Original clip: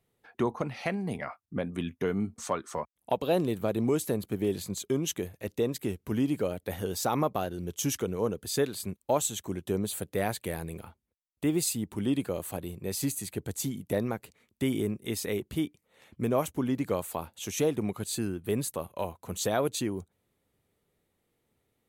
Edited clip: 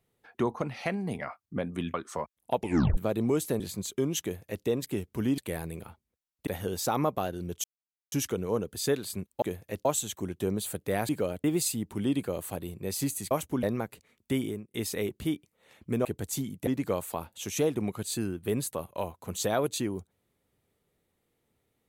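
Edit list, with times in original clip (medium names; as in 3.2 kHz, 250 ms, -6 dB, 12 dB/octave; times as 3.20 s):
1.94–2.53 s: delete
3.16 s: tape stop 0.40 s
4.19–4.52 s: delete
5.14–5.57 s: copy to 9.12 s
6.30–6.65 s: swap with 10.36–11.45 s
7.82 s: insert silence 0.48 s
13.32–13.94 s: swap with 16.36–16.68 s
14.65–15.05 s: fade out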